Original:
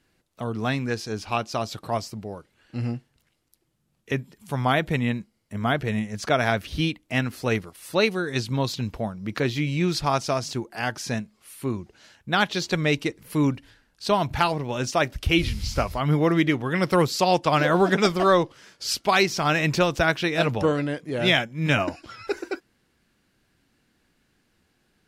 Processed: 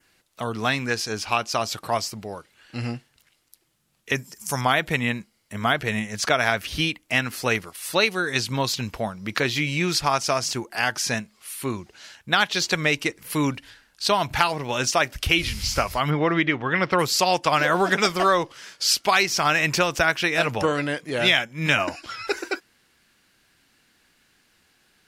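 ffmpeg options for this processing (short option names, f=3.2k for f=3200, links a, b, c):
-filter_complex "[0:a]asettb=1/sr,asplit=3[a][b][c];[a]atrim=end=4.154[d];[b]atrim=start=4.15:end=4.61,asetpts=PTS-STARTPTS,afade=t=in:d=0.004:c=qsin,afade=t=out:st=0.456:d=0.004:c=qsin,highshelf=f=4.6k:t=q:w=3:g=7.5[e];[c]atrim=start=4.606[f];[d][e]acrossfade=d=0.004:c1=hsin:c2=qsin[g];[g][f]acrossfade=d=0.004:c1=qsin:c2=hsin,asettb=1/sr,asplit=3[h][i][j];[h]atrim=end=16.104[k];[i]atrim=start=16.1:end=16.99,asetpts=PTS-STARTPTS,afade=t=in:d=0.004:c=qsin,afade=t=out:st=0.886:d=0.004:c=qsin,lowpass=3k[l];[j]atrim=start=16.986[m];[k][l]acrossfade=d=0.004:c1=hsin:c2=qsin[n];[n][m]acrossfade=d=0.004:c1=qsin:c2=hsin,tiltshelf=f=700:g=-6,acompressor=threshold=-22dB:ratio=2,adynamicequalizer=threshold=0.00708:dfrequency=3800:dqfactor=2.7:tfrequency=3800:tqfactor=2.7:attack=5:release=100:ratio=0.375:range=3:mode=cutabove:tftype=bell,volume=3.5dB"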